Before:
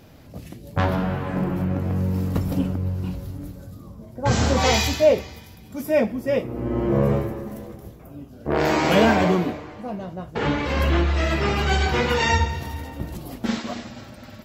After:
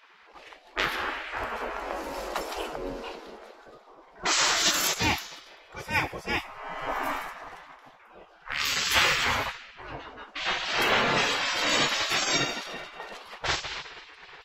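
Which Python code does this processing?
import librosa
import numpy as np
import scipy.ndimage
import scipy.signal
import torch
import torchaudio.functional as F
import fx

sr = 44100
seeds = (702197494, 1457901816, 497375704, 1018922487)

y = fx.env_lowpass(x, sr, base_hz=2200.0, full_db=-16.0)
y = fx.spec_gate(y, sr, threshold_db=-20, keep='weak')
y = F.gain(torch.from_numpy(y), 7.0).numpy()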